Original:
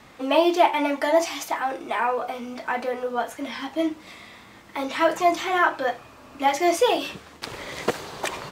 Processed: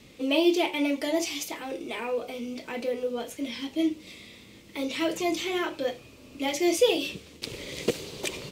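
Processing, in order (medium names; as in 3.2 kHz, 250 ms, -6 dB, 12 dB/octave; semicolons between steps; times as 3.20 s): high-order bell 1.1 kHz -14.5 dB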